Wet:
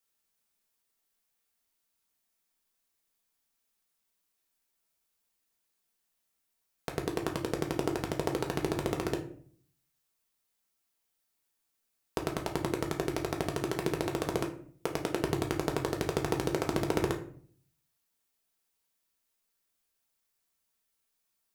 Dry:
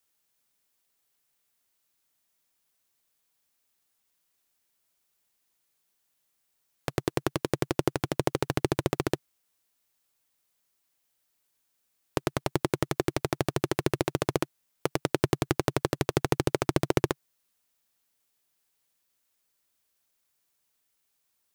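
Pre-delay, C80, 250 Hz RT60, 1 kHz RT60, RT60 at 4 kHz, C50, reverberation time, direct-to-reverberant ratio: 4 ms, 14.5 dB, 0.80 s, 0.50 s, 0.35 s, 10.5 dB, 0.55 s, 1.5 dB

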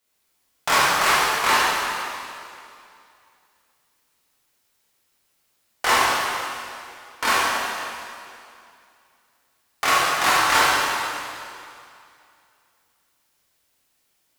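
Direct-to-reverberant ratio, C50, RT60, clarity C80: −8.5 dB, −3.5 dB, 2.5 s, −2.0 dB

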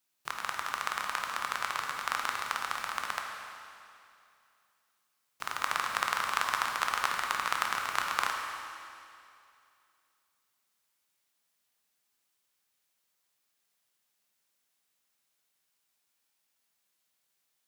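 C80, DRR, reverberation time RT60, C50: 3.5 dB, 1.5 dB, 2.5 s, 2.5 dB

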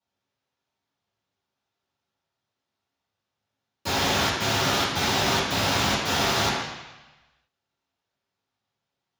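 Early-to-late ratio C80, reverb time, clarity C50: 3.5 dB, 1.1 s, 1.0 dB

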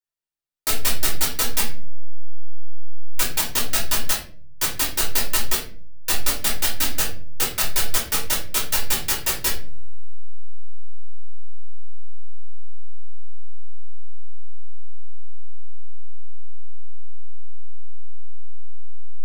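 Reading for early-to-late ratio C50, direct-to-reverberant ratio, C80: 8.5 dB, −3.0 dB, 13.5 dB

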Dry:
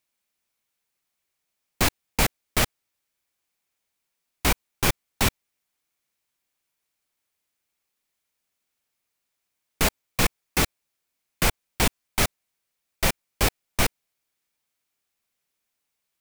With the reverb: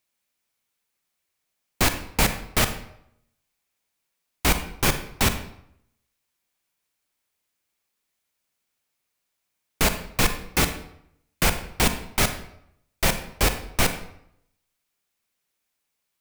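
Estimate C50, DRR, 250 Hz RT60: 10.0 dB, 8.5 dB, 0.75 s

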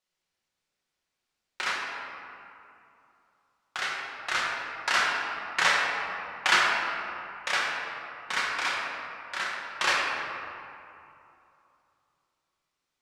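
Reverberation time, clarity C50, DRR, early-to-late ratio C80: 2.8 s, −0.5 dB, −4.5 dB, 1.0 dB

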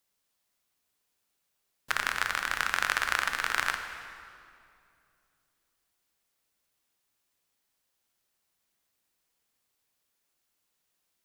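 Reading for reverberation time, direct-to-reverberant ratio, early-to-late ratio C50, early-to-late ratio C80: 2.5 s, 6.0 dB, 7.0 dB, 8.0 dB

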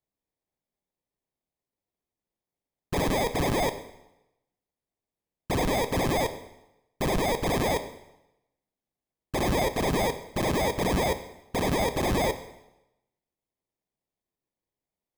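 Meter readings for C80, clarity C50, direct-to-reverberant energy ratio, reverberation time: 14.5 dB, 12.5 dB, 9.5 dB, 0.90 s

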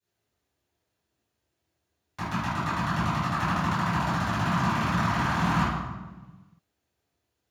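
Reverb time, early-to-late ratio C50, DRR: 1.3 s, −4.0 dB, −21.0 dB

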